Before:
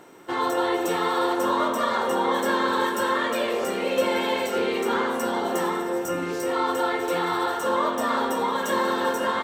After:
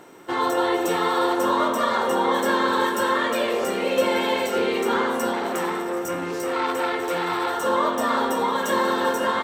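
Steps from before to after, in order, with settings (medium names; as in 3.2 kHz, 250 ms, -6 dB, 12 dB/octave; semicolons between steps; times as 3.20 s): 5.33–7.54 s: transformer saturation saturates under 1.4 kHz; trim +2 dB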